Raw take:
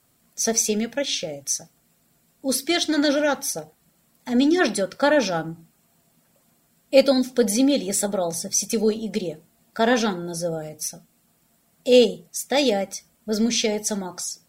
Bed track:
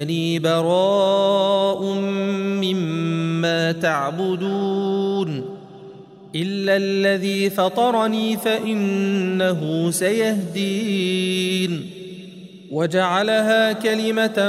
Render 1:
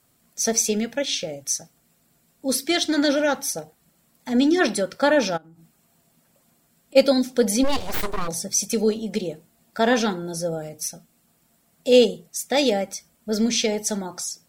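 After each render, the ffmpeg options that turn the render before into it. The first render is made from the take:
-filter_complex "[0:a]asplit=3[s0][s1][s2];[s0]afade=t=out:st=5.36:d=0.02[s3];[s1]acompressor=threshold=0.00501:ratio=8:attack=3.2:release=140:knee=1:detection=peak,afade=t=in:st=5.36:d=0.02,afade=t=out:st=6.95:d=0.02[s4];[s2]afade=t=in:st=6.95:d=0.02[s5];[s3][s4][s5]amix=inputs=3:normalize=0,asplit=3[s6][s7][s8];[s6]afade=t=out:st=7.63:d=0.02[s9];[s7]aeval=exprs='abs(val(0))':c=same,afade=t=in:st=7.63:d=0.02,afade=t=out:st=8.27:d=0.02[s10];[s8]afade=t=in:st=8.27:d=0.02[s11];[s9][s10][s11]amix=inputs=3:normalize=0"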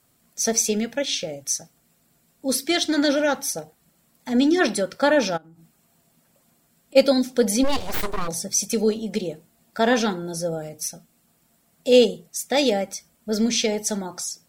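-af anull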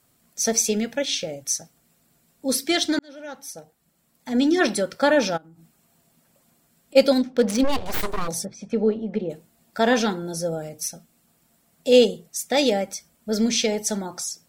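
-filter_complex "[0:a]asettb=1/sr,asplit=3[s0][s1][s2];[s0]atrim=end=7.124[s3];[s1]atrim=start=7.12:end=7.86,asetpts=PTS-STARTPTS,afade=t=in:d=0.004:c=qsin,afade=t=out:st=0.736:d=0.004:c=qsin,adynamicsmooth=sensitivity=4:basefreq=1500[s4];[s2]atrim=start=7.856[s5];[s3][s4]acrossfade=d=0.004:c1=hsin:c2=qsin[s6];[s6][s5]acrossfade=d=0.004:c1=qsin:c2=hsin,asplit=3[s7][s8][s9];[s7]afade=t=out:st=8.44:d=0.02[s10];[s8]lowpass=1600,afade=t=in:st=8.44:d=0.02,afade=t=out:st=9.29:d=0.02[s11];[s9]afade=t=in:st=9.29:d=0.02[s12];[s10][s11][s12]amix=inputs=3:normalize=0,asplit=2[s13][s14];[s13]atrim=end=2.99,asetpts=PTS-STARTPTS,afade=t=out:st=2.986:d=0.004:c=hsin[s15];[s14]atrim=start=2.99,asetpts=PTS-STARTPTS,afade=t=in:d=1.66[s16];[s15][s16]concat=n=2:v=0:a=1"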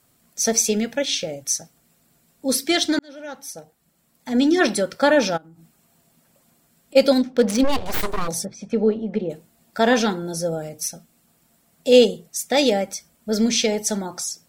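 -af "volume=1.26,alimiter=limit=0.708:level=0:latency=1"

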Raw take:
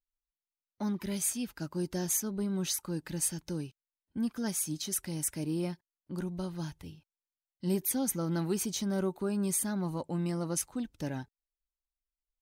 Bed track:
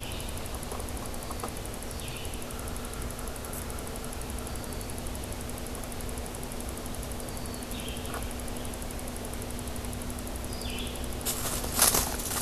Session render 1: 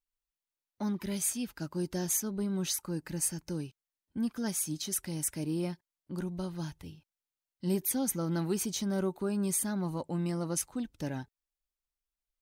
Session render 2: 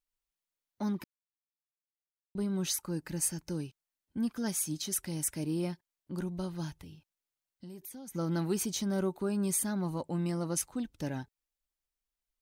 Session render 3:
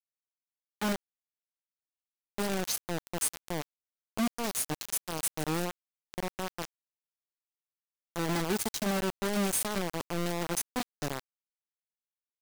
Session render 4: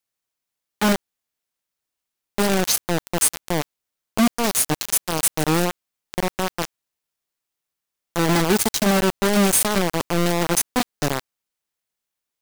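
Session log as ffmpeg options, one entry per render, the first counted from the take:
-filter_complex "[0:a]asettb=1/sr,asplit=3[s0][s1][s2];[s0]atrim=end=2.844[s3];[s1]atrim=start=2.84:end=3.51,asetpts=PTS-STARTPTS,afade=t=in:d=0.004:c=qsin,afade=t=out:st=0.666:d=0.004:c=qsin,equalizer=f=3500:t=o:w=0.36:g=-8.5[s4];[s2]atrim=start=3.506[s5];[s3][s4]acrossfade=d=0.004:c1=hsin:c2=qsin[s6];[s6][s5]acrossfade=d=0.004:c1=qsin:c2=hsin"
-filter_complex "[0:a]asplit=3[s0][s1][s2];[s0]afade=t=out:st=6.76:d=0.02[s3];[s1]acompressor=threshold=0.00631:ratio=6:attack=3.2:release=140:knee=1:detection=peak,afade=t=in:st=6.76:d=0.02,afade=t=out:st=8.14:d=0.02[s4];[s2]afade=t=in:st=8.14:d=0.02[s5];[s3][s4][s5]amix=inputs=3:normalize=0,asplit=3[s6][s7][s8];[s6]atrim=end=1.04,asetpts=PTS-STARTPTS,afade=t=out:st=1.036:d=0.004:c=hsin[s9];[s7]atrim=start=1.04:end=2.35,asetpts=PTS-STARTPTS,volume=0[s10];[s8]atrim=start=2.35,asetpts=PTS-STARTPTS,afade=t=in:d=0.004:c=hsin[s11];[s9][s10][s11]concat=n=3:v=0:a=1"
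-af "acrusher=bits=4:mix=0:aa=0.000001"
-af "volume=3.98"

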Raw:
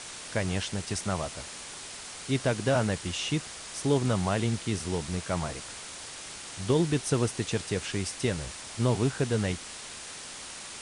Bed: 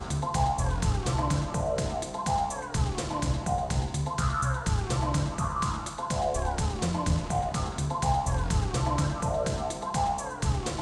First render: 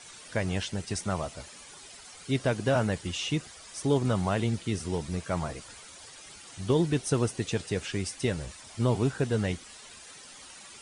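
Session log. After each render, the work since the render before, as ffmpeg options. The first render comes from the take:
-af "afftdn=nr=11:nf=-42"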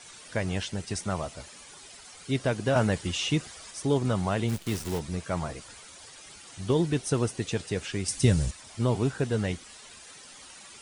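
-filter_complex "[0:a]asplit=3[s0][s1][s2];[s0]afade=t=out:st=4.48:d=0.02[s3];[s1]acrusher=bits=7:dc=4:mix=0:aa=0.000001,afade=t=in:st=4.48:d=0.02,afade=t=out:st=4.98:d=0.02[s4];[s2]afade=t=in:st=4.98:d=0.02[s5];[s3][s4][s5]amix=inputs=3:normalize=0,asettb=1/sr,asplit=3[s6][s7][s8];[s6]atrim=end=8.084[s9];[s7]atrim=start=8.08:end=8.51,asetpts=PTS-STARTPTS,afade=t=in:d=0.004:c=qsin,afade=t=out:st=0.426:d=0.004:c=qsin,bass=f=250:g=12,treble=f=4000:g=9[s10];[s8]atrim=start=8.506[s11];[s9][s10]acrossfade=d=0.004:c1=hsin:c2=qsin[s12];[s12][s11]acrossfade=d=0.004:c1=qsin:c2=hsin,asplit=3[s13][s14][s15];[s13]atrim=end=2.762[s16];[s14]atrim=start=2.758:end=3.712,asetpts=PTS-STARTPTS,volume=1.41[s17];[s15]atrim=start=3.708[s18];[s16][s17]acrossfade=d=0.004:c1=hsin:c2=hsin[s19];[s19][s18]acrossfade=d=0.004:c1=hsin:c2=hsin"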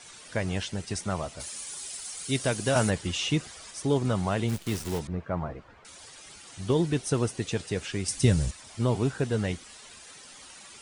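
-filter_complex "[0:a]asplit=3[s0][s1][s2];[s0]afade=t=out:st=1.39:d=0.02[s3];[s1]aemphasis=mode=production:type=75fm,afade=t=in:st=1.39:d=0.02,afade=t=out:st=2.89:d=0.02[s4];[s2]afade=t=in:st=2.89:d=0.02[s5];[s3][s4][s5]amix=inputs=3:normalize=0,asettb=1/sr,asplit=3[s6][s7][s8];[s6]atrim=end=5.074[s9];[s7]atrim=start=5.07:end=5.85,asetpts=PTS-STARTPTS,afade=t=in:d=0.004:c=qsin,afade=t=out:st=0.776:d=0.004:c=qsin,lowpass=1500[s10];[s8]atrim=start=5.846[s11];[s9][s10]acrossfade=d=0.004:c1=hsin:c2=qsin[s12];[s12][s11]acrossfade=d=0.004:c1=qsin:c2=hsin"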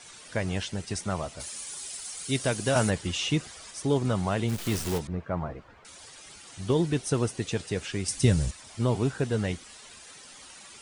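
-filter_complex "[0:a]asettb=1/sr,asplit=3[s0][s1][s2];[s0]atrim=end=4.584[s3];[s1]atrim=start=4.58:end=4.98,asetpts=PTS-STARTPTS,afade=t=in:d=0.004:c=qsin,afade=t=out:st=0.396:d=0.004:c=qsin,aeval=exprs='val(0)+0.5*0.0251*sgn(val(0))':c=same[s4];[s2]atrim=start=4.976[s5];[s3][s4]acrossfade=d=0.004:c1=hsin:c2=qsin[s6];[s6][s5]acrossfade=d=0.004:c1=qsin:c2=hsin"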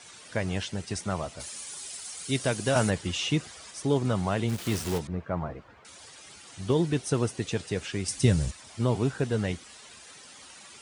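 -af "highpass=57,highshelf=f=9400:g=-3.5"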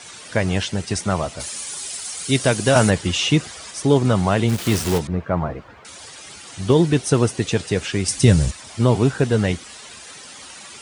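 -af "volume=2.99,alimiter=limit=0.891:level=0:latency=1"

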